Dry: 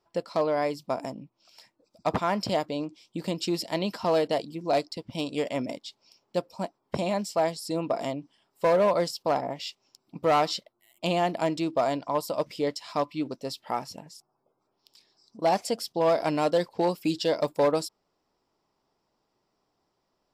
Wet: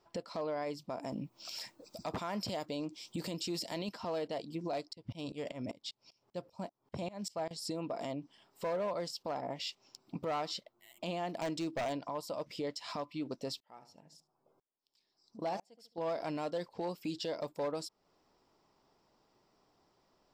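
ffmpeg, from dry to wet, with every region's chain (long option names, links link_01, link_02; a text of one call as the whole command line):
ffmpeg -i in.wav -filter_complex "[0:a]asettb=1/sr,asplit=3[link_01][link_02][link_03];[link_01]atrim=end=1.124[link_04];[link_02]atrim=start=1.12:end=3.89,asetpts=PTS-STARTPTS,afade=type=in:duration=0.004:curve=qsin,afade=type=out:start_time=2.766:duration=0.004:curve=qsin,highshelf=frequency=5300:gain=10.5,acontrast=58[link_05];[link_03]atrim=start=3.886[link_06];[link_04][link_05]acrossfade=duration=0.004:curve1=hsin:curve2=qsin[link_07];[link_07][link_06]acrossfade=duration=0.004:curve1=qsin:curve2=hsin,asettb=1/sr,asplit=3[link_08][link_09][link_10];[link_08]atrim=end=4.934[link_11];[link_09]atrim=start=4.93:end=7.51,asetpts=PTS-STARTPTS,afade=type=in:duration=0.004:curve=qsin,afade=type=out:start_time=2.576:duration=0.004:curve=qsin,equalizer=frequency=100:width_type=o:width=1.1:gain=9,aeval=exprs='val(0)*pow(10,-25*if(lt(mod(-5.1*n/s,1),2*abs(-5.1)/1000),1-mod(-5.1*n/s,1)/(2*abs(-5.1)/1000),(mod(-5.1*n/s,1)-2*abs(-5.1)/1000)/(1-2*abs(-5.1)/1000))/20)':channel_layout=same[link_12];[link_10]atrim=start=7.506[link_13];[link_11][link_12]acrossfade=duration=0.004:curve1=hsin:curve2=qsin[link_14];[link_14][link_13]acrossfade=duration=0.004:curve1=qsin:curve2=hsin,asettb=1/sr,asplit=3[link_15][link_16][link_17];[link_15]atrim=end=11.294[link_18];[link_16]atrim=start=11.29:end=11.93,asetpts=PTS-STARTPTS,afade=type=in:duration=0.004:curve=qsin,afade=type=out:start_time=0.636:duration=0.004:curve=qsin,highshelf=frequency=6700:gain=7.5,aeval=exprs='0.0891*(abs(mod(val(0)/0.0891+3,4)-2)-1)':channel_layout=same[link_19];[link_17]atrim=start=11.926[link_20];[link_18][link_19]acrossfade=duration=0.004:curve1=hsin:curve2=qsin[link_21];[link_21][link_20]acrossfade=duration=0.004:curve1=qsin:curve2=hsin,asettb=1/sr,asplit=3[link_22][link_23][link_24];[link_22]atrim=end=13.604[link_25];[link_23]atrim=start=13.6:end=15.98,asetpts=PTS-STARTPTS,afade=type=in:duration=0.004:curve=qsin,afade=type=out:start_time=2.376:duration=0.004:curve=qsin,asplit=2[link_26][link_27];[link_27]adelay=72,lowpass=frequency=1300:poles=1,volume=-11dB,asplit=2[link_28][link_29];[link_29]adelay=72,lowpass=frequency=1300:poles=1,volume=0.27,asplit=2[link_30][link_31];[link_31]adelay=72,lowpass=frequency=1300:poles=1,volume=0.27[link_32];[link_26][link_28][link_30][link_32]amix=inputs=4:normalize=0,atrim=end_sample=104958,aeval=exprs='val(0)*pow(10,-34*if(lt(mod(-1*n/s,1),2*abs(-1)/1000),1-mod(-1*n/s,1)/(2*abs(-1)/1000),(mod(-1*n/s,1)-2*abs(-1)/1000)/(1-2*abs(-1)/1000))/20)':channel_layout=same[link_33];[link_24]atrim=start=15.976[link_34];[link_25][link_33]acrossfade=duration=0.004:curve1=hsin:curve2=qsin[link_35];[link_35][link_34]acrossfade=duration=0.004:curve1=qsin:curve2=hsin,equalizer=frequency=11000:width=2.5:gain=-10.5,acompressor=threshold=-41dB:ratio=3,alimiter=level_in=9.5dB:limit=-24dB:level=0:latency=1:release=12,volume=-9.5dB,volume=4dB" out.wav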